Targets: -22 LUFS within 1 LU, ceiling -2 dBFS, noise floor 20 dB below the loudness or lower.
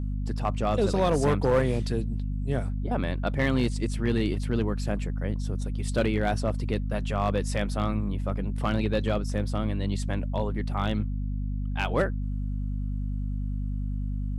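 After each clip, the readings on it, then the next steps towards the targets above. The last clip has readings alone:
clipped 0.4%; flat tops at -16.0 dBFS; hum 50 Hz; harmonics up to 250 Hz; hum level -27 dBFS; loudness -28.5 LUFS; peak -16.0 dBFS; loudness target -22.0 LUFS
-> clip repair -16 dBFS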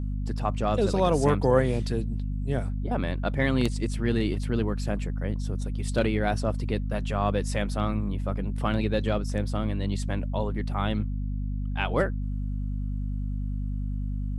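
clipped 0.0%; hum 50 Hz; harmonics up to 250 Hz; hum level -27 dBFS
-> notches 50/100/150/200/250 Hz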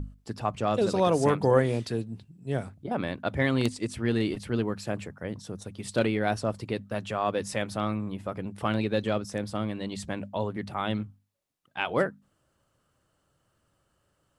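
hum none; loudness -29.5 LUFS; peak -8.5 dBFS; loudness target -22.0 LUFS
-> gain +7.5 dB; limiter -2 dBFS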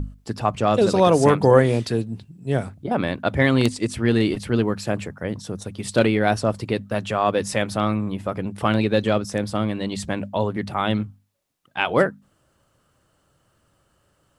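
loudness -22.0 LUFS; peak -2.0 dBFS; noise floor -66 dBFS

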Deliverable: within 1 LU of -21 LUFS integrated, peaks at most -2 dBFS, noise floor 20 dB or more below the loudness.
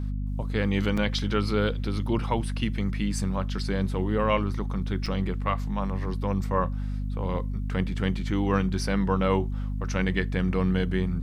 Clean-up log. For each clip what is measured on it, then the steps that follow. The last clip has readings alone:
dropouts 2; longest dropout 5.3 ms; hum 50 Hz; harmonics up to 250 Hz; hum level -27 dBFS; loudness -27.5 LUFS; peak -10.5 dBFS; loudness target -21.0 LUFS
-> interpolate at 0.97/5.06, 5.3 ms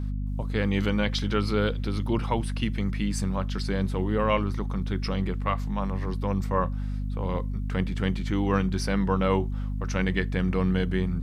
dropouts 0; hum 50 Hz; harmonics up to 250 Hz; hum level -27 dBFS
-> de-hum 50 Hz, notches 5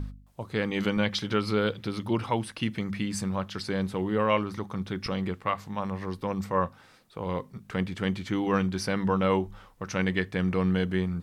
hum none; loudness -29.5 LUFS; peak -11.0 dBFS; loudness target -21.0 LUFS
-> gain +8.5 dB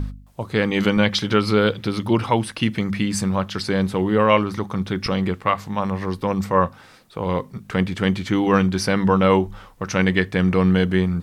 loudness -21.0 LUFS; peak -2.5 dBFS; noise floor -48 dBFS

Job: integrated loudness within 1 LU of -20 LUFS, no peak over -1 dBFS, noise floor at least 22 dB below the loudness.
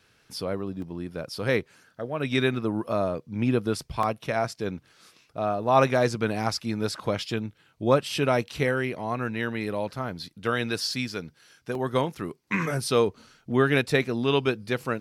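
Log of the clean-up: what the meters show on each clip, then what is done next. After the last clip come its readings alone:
dropouts 3; longest dropout 2.5 ms; loudness -27.0 LUFS; peak -7.0 dBFS; loudness target -20.0 LUFS
-> interpolate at 0.82/4.03/11.75, 2.5 ms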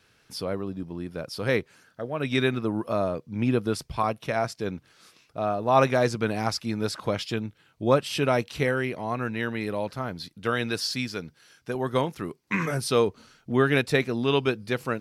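dropouts 0; loudness -27.0 LUFS; peak -7.0 dBFS; loudness target -20.0 LUFS
-> gain +7 dB; limiter -1 dBFS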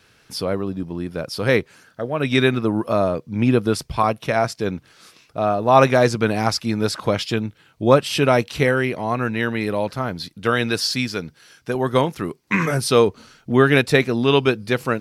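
loudness -20.0 LUFS; peak -1.0 dBFS; noise floor -57 dBFS

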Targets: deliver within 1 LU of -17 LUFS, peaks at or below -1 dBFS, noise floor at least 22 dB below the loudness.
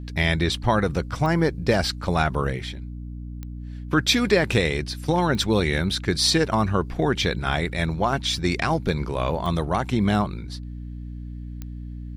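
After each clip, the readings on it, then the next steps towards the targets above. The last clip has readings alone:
clicks 5; hum 60 Hz; harmonics up to 300 Hz; hum level -32 dBFS; loudness -23.0 LUFS; peak -6.5 dBFS; loudness target -17.0 LUFS
-> de-click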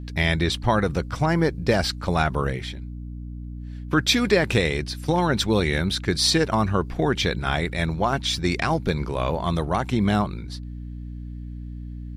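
clicks 0; hum 60 Hz; harmonics up to 300 Hz; hum level -32 dBFS
-> de-hum 60 Hz, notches 5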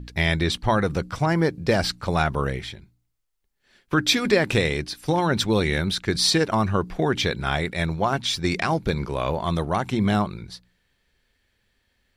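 hum none; loudness -23.0 LUFS; peak -6.0 dBFS; loudness target -17.0 LUFS
-> gain +6 dB; limiter -1 dBFS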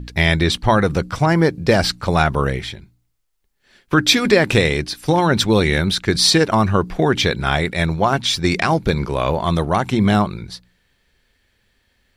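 loudness -17.0 LUFS; peak -1.0 dBFS; noise floor -66 dBFS

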